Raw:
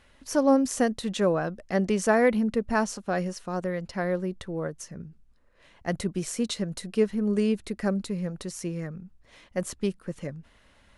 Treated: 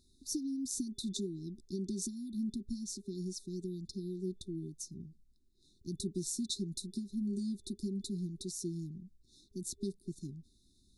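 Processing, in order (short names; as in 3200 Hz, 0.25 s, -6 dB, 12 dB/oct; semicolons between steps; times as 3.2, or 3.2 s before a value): low shelf 330 Hz -5.5 dB; compressor 6:1, threshold -28 dBFS, peak gain reduction 10.5 dB; FFT band-reject 400–3500 Hz; gain -2.5 dB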